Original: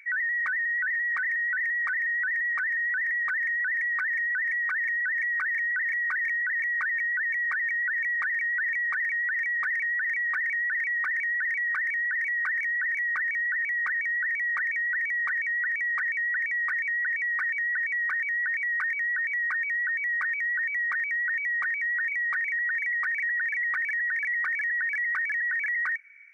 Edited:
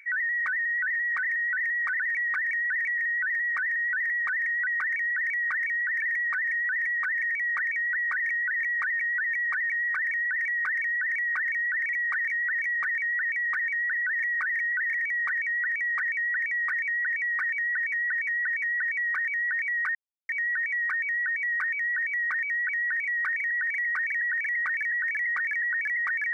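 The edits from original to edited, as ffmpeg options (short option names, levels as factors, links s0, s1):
-filter_complex "[0:a]asplit=16[s0][s1][s2][s3][s4][s5][s6][s7][s8][s9][s10][s11][s12][s13][s14][s15];[s0]atrim=end=1.992[s16];[s1]atrim=start=7.868:end=8.862[s17];[s2]atrim=start=1.988:end=3.682[s18];[s3]atrim=start=10.908:end=12.262[s19];[s4]atrim=start=3.678:end=4.962[s20];[s5]atrim=start=14.298:end=14.982[s21];[s6]atrim=start=5.968:end=7.872[s22];[s7]atrim=start=8.858:end=10.912[s23];[s8]atrim=start=12.258:end=14.302[s24];[s9]atrim=start=4.958:end=5.972[s25];[s10]atrim=start=14.978:end=17.932[s26];[s11]atrim=start=17.578:end=17.932[s27];[s12]atrim=start=17.578:end=17.932[s28];[s13]atrim=start=17.578:end=18.9,asetpts=PTS-STARTPTS,afade=t=out:st=1.318:d=0.004:c=hsin,apad=pad_dur=0.34[s29];[s14]atrim=start=18.9:end=21.302,asetpts=PTS-STARTPTS,afade=t=in:d=0.004:c=hsin[s30];[s15]atrim=start=21.768[s31];[s16][s17]acrossfade=d=0.004:c1=hsin:c2=hsin[s32];[s32][s18]acrossfade=d=0.004:c1=hsin:c2=hsin[s33];[s33][s19]acrossfade=d=0.004:c1=hsin:c2=hsin[s34];[s34][s20]acrossfade=d=0.004:c1=hsin:c2=hsin[s35];[s35][s21]acrossfade=d=0.004:c1=hsin:c2=hsin[s36];[s36][s22]acrossfade=d=0.004:c1=hsin:c2=hsin[s37];[s37][s23]acrossfade=d=0.004:c1=hsin:c2=hsin[s38];[s38][s24]acrossfade=d=0.004:c1=hsin:c2=hsin[s39];[s39][s25]acrossfade=d=0.004:c1=hsin:c2=hsin[s40];[s40][s26]acrossfade=d=0.004:c1=hsin:c2=hsin[s41];[s41][s27]acrossfade=d=0.004:c1=hsin:c2=hsin[s42];[s42][s28]acrossfade=d=0.004:c1=hsin:c2=hsin[s43];[s29][s30]concat=n=2:v=0:a=1[s44];[s43][s44]acrossfade=d=0.004:c1=hsin:c2=hsin[s45];[s45][s31]acrossfade=d=0.004:c1=hsin:c2=hsin"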